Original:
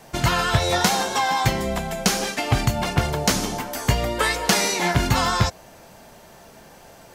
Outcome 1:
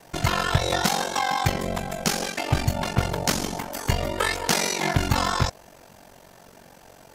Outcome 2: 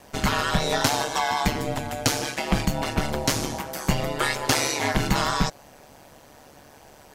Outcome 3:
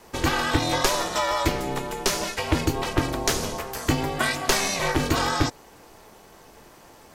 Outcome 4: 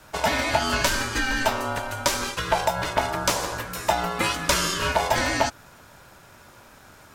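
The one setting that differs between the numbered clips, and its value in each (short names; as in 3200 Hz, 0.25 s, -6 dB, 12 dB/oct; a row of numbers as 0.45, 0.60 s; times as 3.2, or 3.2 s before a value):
ring modulator, frequency: 23, 72, 200, 770 Hz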